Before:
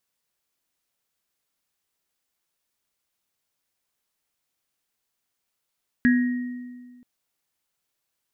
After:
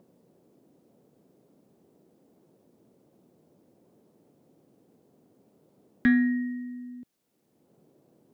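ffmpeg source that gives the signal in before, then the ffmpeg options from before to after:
-f lavfi -i "aevalsrc='0.2*pow(10,-3*t/1.71)*sin(2*PI*247*t)+0.0794*pow(10,-3*t/0.45)*sin(2*PI*1670*t)+0.0596*pow(10,-3*t/1.21)*sin(2*PI*1880*t)':duration=0.98:sample_rate=44100"
-filter_complex "[0:a]acrossover=split=130|490[link_01][link_02][link_03];[link_02]acompressor=mode=upward:threshold=-34dB:ratio=2.5[link_04];[link_01][link_04][link_03]amix=inputs=3:normalize=0,asoftclip=type=tanh:threshold=-11.5dB"

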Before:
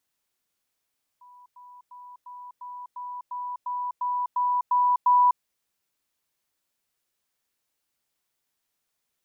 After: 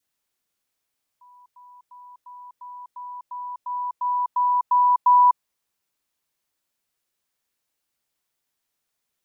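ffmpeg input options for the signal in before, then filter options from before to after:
-f lavfi -i "aevalsrc='pow(10,(-48+3*floor(t/0.35))/20)*sin(2*PI*986*t)*clip(min(mod(t,0.35),0.25-mod(t,0.35))/0.005,0,1)':duration=4.2:sample_rate=44100"
-af "adynamicequalizer=threshold=0.0282:dfrequency=1000:dqfactor=2.4:tfrequency=1000:tqfactor=2.4:attack=5:release=100:ratio=0.375:range=2:mode=boostabove:tftype=bell"

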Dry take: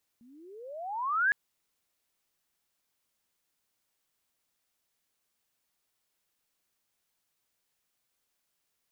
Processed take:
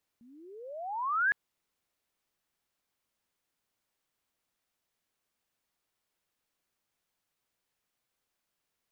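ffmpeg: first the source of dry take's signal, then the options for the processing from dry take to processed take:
-f lavfi -i "aevalsrc='pow(10,(-21+33*(t/1.11-1))/20)*sin(2*PI*227*1.11/(35*log(2)/12)*(exp(35*log(2)/12*t/1.11)-1))':duration=1.11:sample_rate=44100"
-af "highshelf=frequency=3600:gain=-6.5"

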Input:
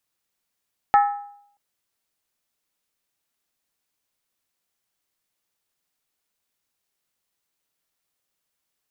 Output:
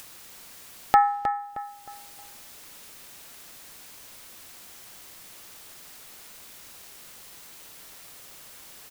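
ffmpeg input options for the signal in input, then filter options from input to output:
-f lavfi -i "aevalsrc='0.316*pow(10,-3*t/0.67)*sin(2*PI*815*t)+0.133*pow(10,-3*t/0.531)*sin(2*PI*1299.1*t)+0.0562*pow(10,-3*t/0.458)*sin(2*PI*1740.8*t)+0.0237*pow(10,-3*t/0.442)*sin(2*PI*1871.2*t)+0.01*pow(10,-3*t/0.411)*sin(2*PI*2162.2*t)':duration=0.63:sample_rate=44100"
-filter_complex "[0:a]acompressor=mode=upward:threshold=-21dB:ratio=2.5,asplit=2[link_01][link_02];[link_02]adelay=312,lowpass=frequency=2600:poles=1,volume=-8dB,asplit=2[link_03][link_04];[link_04]adelay=312,lowpass=frequency=2600:poles=1,volume=0.38,asplit=2[link_05][link_06];[link_06]adelay=312,lowpass=frequency=2600:poles=1,volume=0.38,asplit=2[link_07][link_08];[link_08]adelay=312,lowpass=frequency=2600:poles=1,volume=0.38[link_09];[link_01][link_03][link_05][link_07][link_09]amix=inputs=5:normalize=0"

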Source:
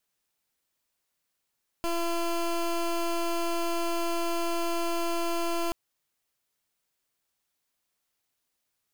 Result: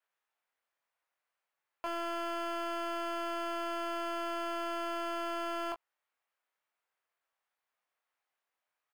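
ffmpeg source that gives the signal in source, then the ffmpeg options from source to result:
-f lavfi -i "aevalsrc='0.0398*(2*lt(mod(339*t,1),0.18)-1)':duration=3.88:sample_rate=44100"
-filter_complex "[0:a]acrossover=split=520 2400:gain=0.0794 1 0.126[link_01][link_02][link_03];[link_01][link_02][link_03]amix=inputs=3:normalize=0,aecho=1:1:23|38:0.668|0.188"

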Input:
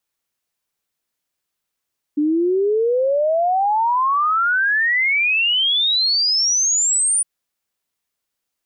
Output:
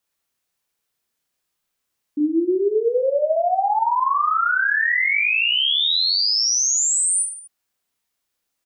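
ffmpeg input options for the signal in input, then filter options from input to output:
-f lavfi -i "aevalsrc='0.188*clip(min(t,5.06-t)/0.01,0,1)*sin(2*PI*290*5.06/log(9500/290)*(exp(log(9500/290)*t/5.06)-1))':duration=5.06:sample_rate=44100"
-filter_complex "[0:a]alimiter=limit=-18.5dB:level=0:latency=1,asplit=2[link_01][link_02];[link_02]aecho=0:1:30|67.5|114.4|173|246.2:0.631|0.398|0.251|0.158|0.1[link_03];[link_01][link_03]amix=inputs=2:normalize=0"

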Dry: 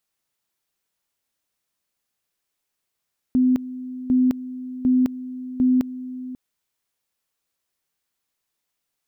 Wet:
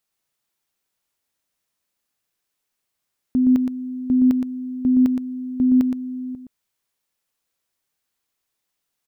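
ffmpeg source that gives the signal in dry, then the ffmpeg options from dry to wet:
-f lavfi -i "aevalsrc='pow(10,(-14-15.5*gte(mod(t,0.75),0.21))/20)*sin(2*PI*254*t)':duration=3:sample_rate=44100"
-af "aecho=1:1:118:0.501"

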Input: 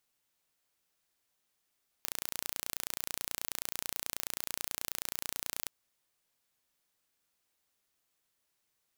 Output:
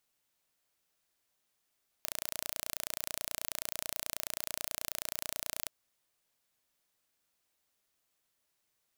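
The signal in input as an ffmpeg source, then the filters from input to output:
-f lavfi -i "aevalsrc='0.398*eq(mod(n,1505),0)':duration=3.62:sample_rate=44100"
-af "equalizer=frequency=630:width_type=o:width=0.22:gain=3"

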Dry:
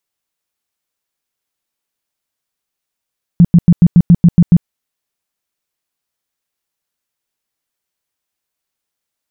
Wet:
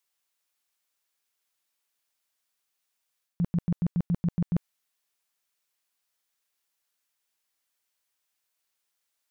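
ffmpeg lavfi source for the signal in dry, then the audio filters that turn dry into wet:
-f lavfi -i "aevalsrc='0.841*sin(2*PI*172*mod(t,0.14))*lt(mod(t,0.14),8/172)':duration=1.26:sample_rate=44100"
-af "lowshelf=frequency=490:gain=-11.5,areverse,acompressor=threshold=-25dB:ratio=5,areverse"

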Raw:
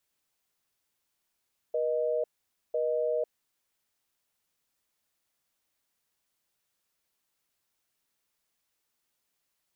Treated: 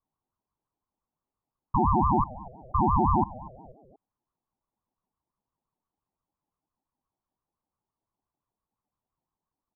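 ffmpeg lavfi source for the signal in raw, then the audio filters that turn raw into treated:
-f lavfi -i "aevalsrc='0.0376*(sin(2*PI*480*t)+sin(2*PI*620*t))*clip(min(mod(t,1),0.5-mod(t,1))/0.005,0,1)':duration=1.78:sample_rate=44100"
-filter_complex "[0:a]lowpass=frequency=560:width_type=q:width=4.2,asplit=4[link_01][link_02][link_03][link_04];[link_02]adelay=240,afreqshift=-120,volume=-19dB[link_05];[link_03]adelay=480,afreqshift=-240,volume=-26.3dB[link_06];[link_04]adelay=720,afreqshift=-360,volume=-33.7dB[link_07];[link_01][link_05][link_06][link_07]amix=inputs=4:normalize=0,aeval=exprs='val(0)*sin(2*PI*410*n/s+410*0.4/5.8*sin(2*PI*5.8*n/s))':channel_layout=same"

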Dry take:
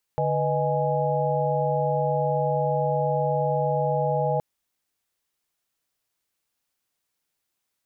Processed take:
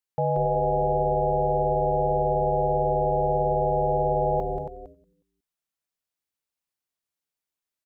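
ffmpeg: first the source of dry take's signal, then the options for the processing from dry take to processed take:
-f lavfi -i "aevalsrc='0.0473*(sin(2*PI*146.83*t)+sin(2*PI*493.88*t)+sin(2*PI*622.25*t)+sin(2*PI*830.61*t))':duration=4.22:sample_rate=44100"
-filter_complex "[0:a]asplit=2[link_01][link_02];[link_02]asplit=4[link_03][link_04][link_05][link_06];[link_03]adelay=182,afreqshift=-110,volume=-7.5dB[link_07];[link_04]adelay=364,afreqshift=-220,volume=-16.6dB[link_08];[link_05]adelay=546,afreqshift=-330,volume=-25.7dB[link_09];[link_06]adelay=728,afreqshift=-440,volume=-34.9dB[link_10];[link_07][link_08][link_09][link_10]amix=inputs=4:normalize=0[link_11];[link_01][link_11]amix=inputs=2:normalize=0,agate=range=-11dB:threshold=-36dB:ratio=16:detection=peak,asplit=2[link_12][link_13];[link_13]aecho=0:1:276:0.316[link_14];[link_12][link_14]amix=inputs=2:normalize=0"

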